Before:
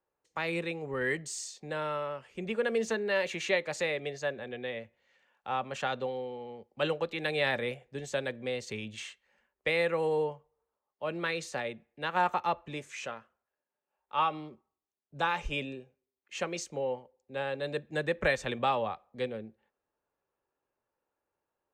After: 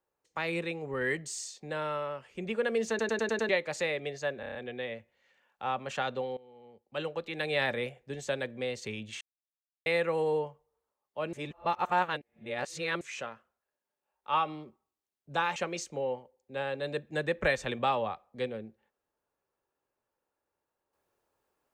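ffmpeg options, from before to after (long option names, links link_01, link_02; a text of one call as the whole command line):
ffmpeg -i in.wav -filter_complex "[0:a]asplit=18[link_01][link_02][link_03][link_04][link_05][link_06][link_07][link_08][link_09][link_10][link_11][link_12][link_13][link_14][link_15][link_16][link_17][link_18];[link_01]atrim=end=2.992[link_19];[link_02]atrim=start=2.888:end=2.992[link_20];[link_03]atrim=start=2.888:end=2.992[link_21];[link_04]atrim=start=2.888:end=2.992[link_22];[link_05]atrim=start=2.888:end=2.992[link_23];[link_06]atrim=start=2.888:end=2.992[link_24];[link_07]atrim=start=3.488:end=4.432[link_25];[link_08]atrim=start=4.398:end=4.432[link_26];[link_09]atrim=start=4.398:end=4.432[link_27];[link_10]atrim=start=4.398:end=4.432[link_28];[link_11]atrim=start=4.398:end=4.432[link_29];[link_12]atrim=start=4.398:end=6.22,asetpts=PTS-STARTPTS,afade=type=out:start_time=1.818:duration=0.004:curve=hsin:silence=0.112202[link_30];[link_13]atrim=start=6.22:end=9.06,asetpts=PTS-STARTPTS,afade=type=in:duration=1.27:silence=0.112202,afade=type=out:start_time=2.836:duration=0.004:curve=hsin[link_31];[link_14]atrim=start=9.06:end=9.71,asetpts=PTS-STARTPTS,volume=0[link_32];[link_15]atrim=start=9.71:end=11.182,asetpts=PTS-STARTPTS,afade=type=in:duration=0.004:curve=hsin[link_33];[link_16]atrim=start=11.178:end=12.862,asetpts=PTS-STARTPTS,areverse[link_34];[link_17]atrim=start=12.858:end=15.412[link_35];[link_18]atrim=start=16.358[link_36];[link_19][link_20]acrossfade=duration=0.004:curve1=hsin:curve2=hsin[link_37];[link_37][link_21]acrossfade=duration=0.004:curve1=hsin:curve2=hsin[link_38];[link_38][link_22]acrossfade=duration=0.004:curve1=hsin:curve2=hsin[link_39];[link_39][link_23]acrossfade=duration=0.004:curve1=hsin:curve2=hsin[link_40];[link_40][link_24]acrossfade=duration=0.004:curve1=hsin:curve2=hsin[link_41];[link_41][link_25]acrossfade=duration=0.004:curve1=hsin:curve2=hsin[link_42];[link_42][link_26]acrossfade=duration=0.004:curve1=hsin:curve2=hsin[link_43];[link_43][link_27]acrossfade=duration=0.004:curve1=hsin:curve2=hsin[link_44];[link_44][link_28]acrossfade=duration=0.004:curve1=hsin:curve2=hsin[link_45];[link_45][link_29]acrossfade=duration=0.004:curve1=hsin:curve2=hsin[link_46];[link_30][link_31][link_32][link_33]concat=n=4:v=0:a=1[link_47];[link_46][link_47]acrossfade=duration=0.004:curve1=hsin:curve2=hsin[link_48];[link_48][link_34]acrossfade=duration=0.004:curve1=hsin:curve2=hsin[link_49];[link_49][link_35]acrossfade=duration=0.004:curve1=hsin:curve2=hsin[link_50];[link_50][link_36]acrossfade=duration=0.004:curve1=hsin:curve2=hsin" out.wav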